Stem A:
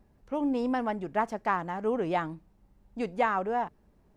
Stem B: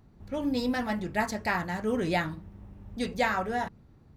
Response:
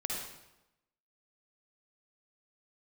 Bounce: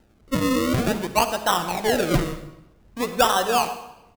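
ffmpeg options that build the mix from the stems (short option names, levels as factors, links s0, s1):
-filter_complex "[0:a]equalizer=f=610:t=o:w=2.5:g=8.5,bandreject=f=410:w=12,acrusher=samples=38:mix=1:aa=0.000001:lfo=1:lforange=38:lforate=0.52,volume=0.794,asplit=2[s0][s1];[s1]volume=0.376[s2];[1:a]volume=-1,adelay=11,volume=0.299[s3];[2:a]atrim=start_sample=2205[s4];[s2][s4]afir=irnorm=-1:irlink=0[s5];[s0][s3][s5]amix=inputs=3:normalize=0"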